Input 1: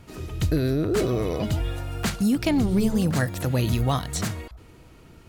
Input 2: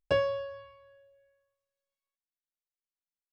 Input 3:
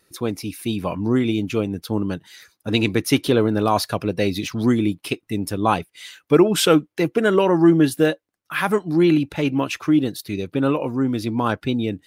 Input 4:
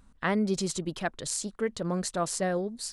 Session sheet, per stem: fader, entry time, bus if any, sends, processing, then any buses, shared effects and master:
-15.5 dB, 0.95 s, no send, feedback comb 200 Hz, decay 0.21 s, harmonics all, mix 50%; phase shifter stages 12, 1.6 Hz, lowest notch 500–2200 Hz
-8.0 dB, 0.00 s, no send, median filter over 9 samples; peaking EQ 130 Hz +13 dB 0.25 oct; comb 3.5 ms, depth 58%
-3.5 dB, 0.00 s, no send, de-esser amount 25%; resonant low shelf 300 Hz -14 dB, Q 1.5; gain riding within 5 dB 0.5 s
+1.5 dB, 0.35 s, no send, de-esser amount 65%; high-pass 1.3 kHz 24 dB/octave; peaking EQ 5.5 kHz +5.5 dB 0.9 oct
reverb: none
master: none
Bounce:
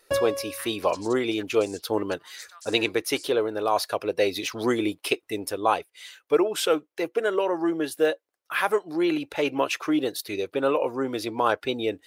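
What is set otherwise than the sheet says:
stem 1: muted; stem 2 -8.0 dB -> -2.0 dB; stem 4 +1.5 dB -> -10.0 dB

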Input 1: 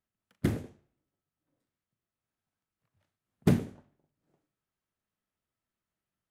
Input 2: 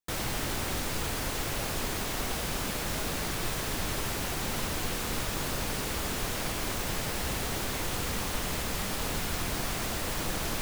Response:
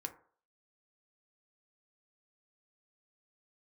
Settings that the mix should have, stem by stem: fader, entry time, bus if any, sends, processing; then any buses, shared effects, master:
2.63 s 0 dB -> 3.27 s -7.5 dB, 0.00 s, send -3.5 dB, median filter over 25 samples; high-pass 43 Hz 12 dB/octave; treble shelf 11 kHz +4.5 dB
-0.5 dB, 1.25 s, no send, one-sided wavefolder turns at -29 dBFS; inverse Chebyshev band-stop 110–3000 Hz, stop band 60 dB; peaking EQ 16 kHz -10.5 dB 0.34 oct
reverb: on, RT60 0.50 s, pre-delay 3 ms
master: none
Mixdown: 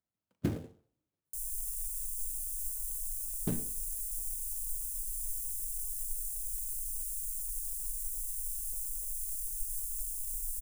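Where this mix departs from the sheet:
stem 1 0.0 dB -> -6.5 dB; master: extra treble shelf 2.9 kHz +6.5 dB

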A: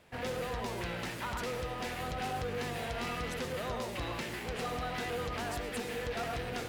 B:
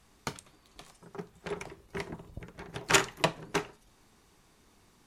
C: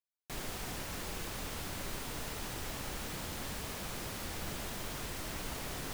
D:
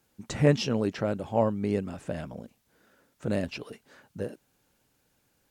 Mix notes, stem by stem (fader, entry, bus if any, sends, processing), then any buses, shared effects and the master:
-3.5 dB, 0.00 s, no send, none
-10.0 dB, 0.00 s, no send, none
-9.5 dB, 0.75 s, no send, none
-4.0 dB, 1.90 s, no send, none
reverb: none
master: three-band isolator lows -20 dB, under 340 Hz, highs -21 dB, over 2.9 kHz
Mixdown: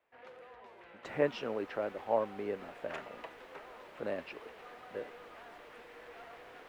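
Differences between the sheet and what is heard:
stem A -3.5 dB -> -14.5 dB; stem B -10.0 dB -> -19.0 dB; stem D: entry 1.90 s -> 0.75 s

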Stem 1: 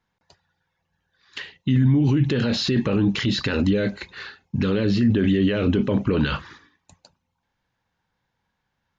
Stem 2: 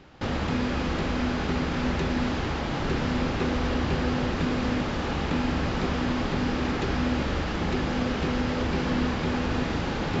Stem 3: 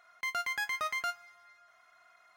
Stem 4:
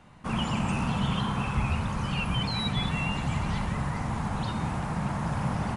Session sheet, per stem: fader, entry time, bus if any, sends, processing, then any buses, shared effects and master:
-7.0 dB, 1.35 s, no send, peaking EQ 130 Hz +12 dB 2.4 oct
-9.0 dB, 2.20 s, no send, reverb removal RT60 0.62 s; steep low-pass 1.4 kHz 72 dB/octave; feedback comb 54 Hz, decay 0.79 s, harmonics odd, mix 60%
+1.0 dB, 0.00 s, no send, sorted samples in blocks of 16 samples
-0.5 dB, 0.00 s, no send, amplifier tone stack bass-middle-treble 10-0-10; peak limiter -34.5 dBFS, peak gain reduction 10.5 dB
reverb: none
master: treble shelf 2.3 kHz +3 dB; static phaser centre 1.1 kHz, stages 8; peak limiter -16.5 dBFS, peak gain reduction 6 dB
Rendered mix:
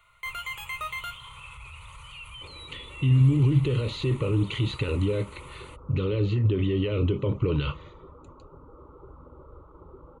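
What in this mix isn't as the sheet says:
stem 3: missing sorted samples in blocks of 16 samples; master: missing peak limiter -16.5 dBFS, peak gain reduction 6 dB

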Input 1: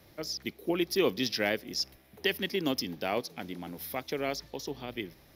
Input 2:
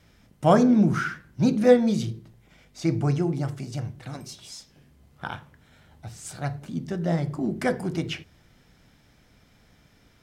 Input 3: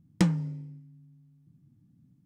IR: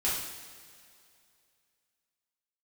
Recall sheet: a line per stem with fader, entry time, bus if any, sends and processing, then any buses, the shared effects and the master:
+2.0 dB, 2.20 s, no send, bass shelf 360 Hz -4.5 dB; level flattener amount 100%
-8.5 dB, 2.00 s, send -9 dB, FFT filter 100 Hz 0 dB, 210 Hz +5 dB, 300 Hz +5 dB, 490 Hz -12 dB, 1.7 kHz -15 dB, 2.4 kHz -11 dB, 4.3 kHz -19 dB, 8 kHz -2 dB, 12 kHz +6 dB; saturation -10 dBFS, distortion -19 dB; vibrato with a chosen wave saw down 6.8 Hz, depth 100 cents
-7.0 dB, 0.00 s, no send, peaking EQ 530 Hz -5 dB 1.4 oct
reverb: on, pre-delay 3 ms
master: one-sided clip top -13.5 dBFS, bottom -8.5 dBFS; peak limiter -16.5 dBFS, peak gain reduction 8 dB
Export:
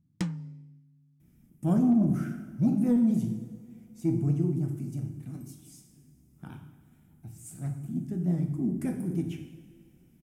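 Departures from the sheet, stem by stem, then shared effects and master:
stem 1: muted; stem 2: entry 2.00 s -> 1.20 s

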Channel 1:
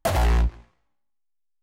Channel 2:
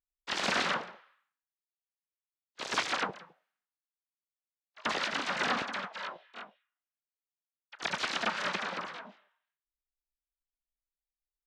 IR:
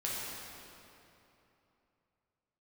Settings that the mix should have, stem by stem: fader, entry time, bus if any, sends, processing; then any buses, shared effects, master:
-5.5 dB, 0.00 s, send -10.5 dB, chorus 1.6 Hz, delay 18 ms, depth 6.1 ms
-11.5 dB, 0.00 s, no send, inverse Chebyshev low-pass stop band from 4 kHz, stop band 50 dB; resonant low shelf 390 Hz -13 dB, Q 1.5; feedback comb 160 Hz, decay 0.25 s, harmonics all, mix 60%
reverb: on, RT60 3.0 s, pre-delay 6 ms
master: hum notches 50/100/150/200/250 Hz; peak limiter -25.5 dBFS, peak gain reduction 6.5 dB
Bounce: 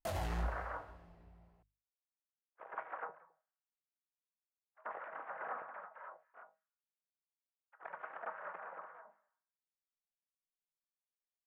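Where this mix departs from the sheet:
stem 1 -5.5 dB -> -15.0 dB; stem 2 -11.5 dB -> -5.5 dB

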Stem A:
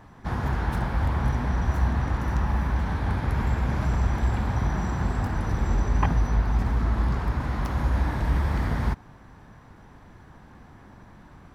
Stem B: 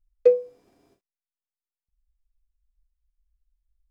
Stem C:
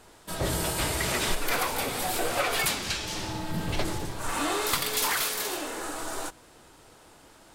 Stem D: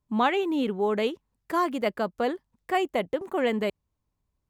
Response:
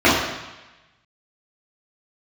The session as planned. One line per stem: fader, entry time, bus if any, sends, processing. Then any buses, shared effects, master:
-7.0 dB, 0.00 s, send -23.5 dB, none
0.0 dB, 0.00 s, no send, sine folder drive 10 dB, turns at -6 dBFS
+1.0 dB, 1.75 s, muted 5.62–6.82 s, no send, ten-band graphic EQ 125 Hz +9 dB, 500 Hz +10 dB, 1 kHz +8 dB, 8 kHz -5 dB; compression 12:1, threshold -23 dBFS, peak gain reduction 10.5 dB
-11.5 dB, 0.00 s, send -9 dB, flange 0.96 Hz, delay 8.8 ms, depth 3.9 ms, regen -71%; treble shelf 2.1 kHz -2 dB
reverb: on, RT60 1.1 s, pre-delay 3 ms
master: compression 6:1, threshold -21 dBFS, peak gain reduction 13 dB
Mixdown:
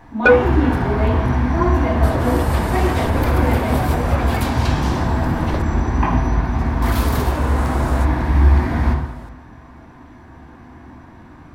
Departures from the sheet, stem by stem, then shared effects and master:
stem A -7.0 dB -> +2.0 dB; master: missing compression 6:1, threshold -21 dBFS, peak gain reduction 13 dB

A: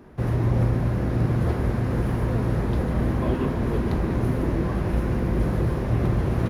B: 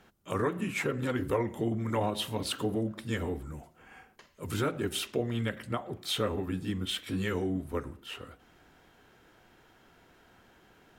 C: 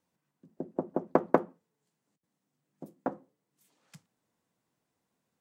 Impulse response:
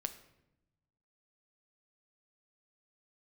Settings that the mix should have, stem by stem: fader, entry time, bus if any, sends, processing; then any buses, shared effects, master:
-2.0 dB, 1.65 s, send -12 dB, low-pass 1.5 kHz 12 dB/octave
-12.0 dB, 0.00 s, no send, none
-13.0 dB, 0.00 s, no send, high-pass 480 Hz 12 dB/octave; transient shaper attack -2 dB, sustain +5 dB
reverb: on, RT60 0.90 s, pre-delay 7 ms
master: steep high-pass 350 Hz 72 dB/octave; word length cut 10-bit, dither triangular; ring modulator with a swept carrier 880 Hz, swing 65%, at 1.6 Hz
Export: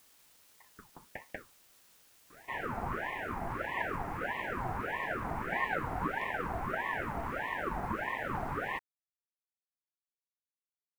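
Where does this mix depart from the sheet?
stem A: entry 1.65 s -> 2.30 s; stem B: muted

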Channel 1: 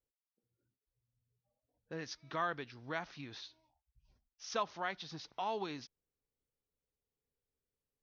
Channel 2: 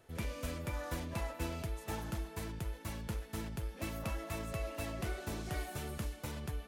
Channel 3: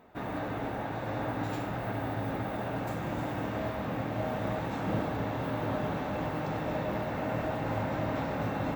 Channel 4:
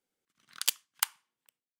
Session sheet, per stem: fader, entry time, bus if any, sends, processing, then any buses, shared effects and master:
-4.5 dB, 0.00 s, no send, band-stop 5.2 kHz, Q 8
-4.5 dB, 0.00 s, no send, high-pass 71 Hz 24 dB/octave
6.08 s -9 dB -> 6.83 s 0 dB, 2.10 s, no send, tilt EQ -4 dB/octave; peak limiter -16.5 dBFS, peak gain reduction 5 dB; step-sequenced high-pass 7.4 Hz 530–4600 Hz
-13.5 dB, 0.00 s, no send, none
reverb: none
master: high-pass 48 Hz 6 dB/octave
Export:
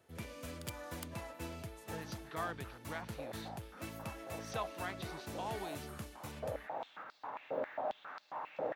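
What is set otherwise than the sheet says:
stem 3 -9.0 dB -> -19.5 dB; stem 4 -13.5 dB -> -20.5 dB

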